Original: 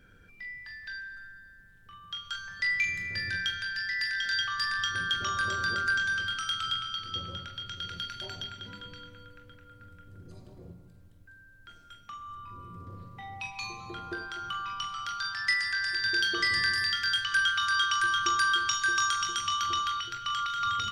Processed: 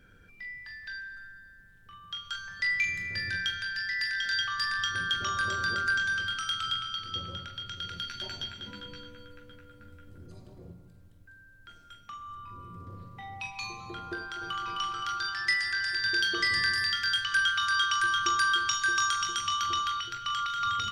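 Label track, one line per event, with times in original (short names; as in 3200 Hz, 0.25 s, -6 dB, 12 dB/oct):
8.060000	10.260000	doubler 14 ms -3 dB
14.150000	14.660000	echo throw 0.26 s, feedback 70%, level -3.5 dB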